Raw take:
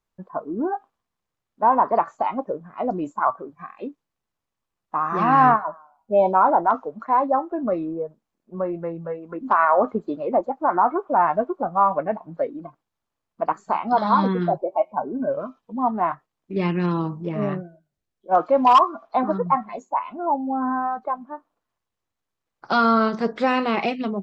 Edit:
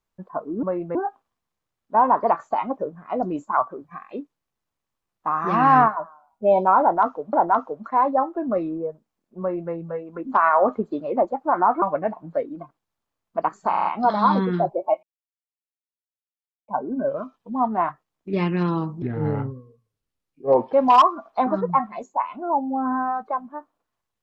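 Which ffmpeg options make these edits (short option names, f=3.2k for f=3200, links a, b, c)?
-filter_complex "[0:a]asplit=12[a][b][c][d][e][f][g][h][i][j][k][l];[a]atrim=end=0.632[m];[b]atrim=start=8.558:end=8.882[n];[c]atrim=start=0.628:end=7.012[o];[d]atrim=start=6.488:end=10.982[p];[e]atrim=start=11.858:end=13.772[q];[f]atrim=start=13.728:end=13.772[r];[g]atrim=start=13.728:end=13.772[s];[h]atrim=start=13.728:end=13.772[t];[i]atrim=start=13.728:end=14.91,asetpts=PTS-STARTPTS,afade=t=out:st=1.178:d=0.004:c=hsin,apad=pad_dur=1.65[u];[j]atrim=start=14.91:end=17.254,asetpts=PTS-STARTPTS,afade=t=in:d=0.004:c=hsin[v];[k]atrim=start=17.25:end=18.5,asetpts=PTS-STARTPTS,asetrate=32193,aresample=44100[w];[l]atrim=start=18.496[x];[m][n]acrossfade=d=0.004:c1=hsin:c2=hsin[y];[y][o]acrossfade=d=0.004:c1=hsin:c2=hsin[z];[z][p]acrossfade=d=0.004:c1=hsin:c2=hsin[aa];[aa][q]acrossfade=d=0.004:c1=hsin:c2=hsin[ab];[ab][r]acrossfade=d=0.004:c1=hsin:c2=hsin[ac];[ac][s]acrossfade=d=0.004:c1=hsin:c2=hsin[ad];[ad][t]acrossfade=d=0.004:c1=hsin:c2=hsin[ae];[u][v]concat=n=2:v=0:a=1[af];[ae][af]acrossfade=d=0.004:c1=hsin:c2=hsin[ag];[ag][w]acrossfade=d=0.004:c1=hsin:c2=hsin[ah];[ah][x]acrossfade=d=0.004:c1=hsin:c2=hsin"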